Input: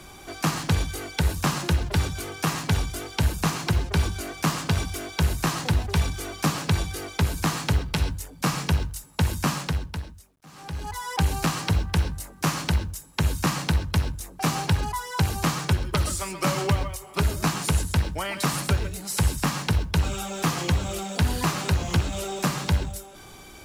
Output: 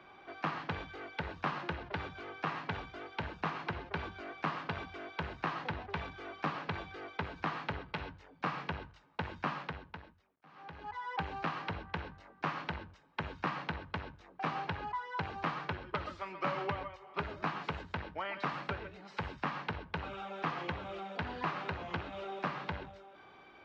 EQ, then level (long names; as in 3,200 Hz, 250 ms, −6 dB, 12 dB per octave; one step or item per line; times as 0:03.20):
high-pass filter 1,500 Hz 6 dB per octave
high-frequency loss of the air 210 metres
head-to-tape spacing loss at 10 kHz 37 dB
+3.0 dB